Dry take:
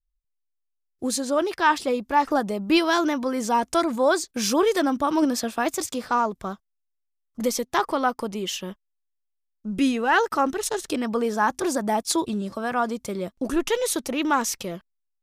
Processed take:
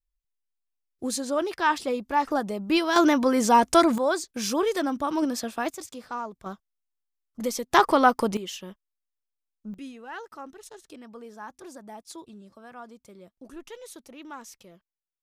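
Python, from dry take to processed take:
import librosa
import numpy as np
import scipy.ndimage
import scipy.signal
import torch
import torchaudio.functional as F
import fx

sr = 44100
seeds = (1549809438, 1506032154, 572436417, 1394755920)

y = fx.gain(x, sr, db=fx.steps((0.0, -3.5), (2.96, 4.0), (3.98, -4.5), (5.7, -11.0), (6.46, -4.5), (7.71, 4.5), (8.37, -7.0), (9.74, -19.0)))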